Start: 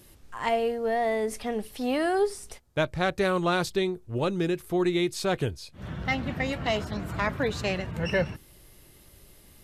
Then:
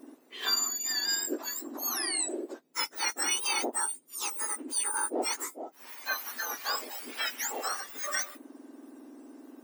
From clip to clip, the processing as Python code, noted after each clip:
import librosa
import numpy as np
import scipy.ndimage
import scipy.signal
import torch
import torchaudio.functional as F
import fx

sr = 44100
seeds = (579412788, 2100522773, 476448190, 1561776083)

y = fx.octave_mirror(x, sr, pivot_hz=1800.0)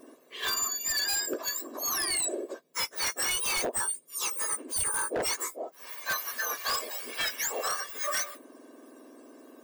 y = x + 0.57 * np.pad(x, (int(1.8 * sr / 1000.0), 0))[:len(x)]
y = 10.0 ** (-25.5 / 20.0) * (np.abs((y / 10.0 ** (-25.5 / 20.0) + 3.0) % 4.0 - 2.0) - 1.0)
y = y * 10.0 ** (2.0 / 20.0)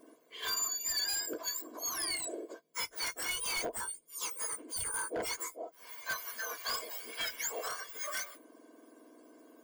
y = fx.ripple_eq(x, sr, per_octave=1.8, db=8)
y = y * 10.0 ** (-7.0 / 20.0)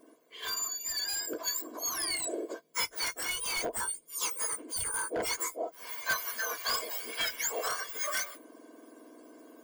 y = fx.rider(x, sr, range_db=5, speed_s=0.5)
y = y * 10.0 ** (3.5 / 20.0)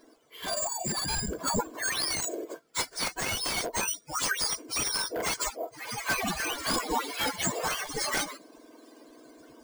y = fx.peak_eq(x, sr, hz=15000.0, db=11.0, octaves=0.75)
y = np.repeat(y[::3], 3)[:len(y)]
y = fx.end_taper(y, sr, db_per_s=370.0)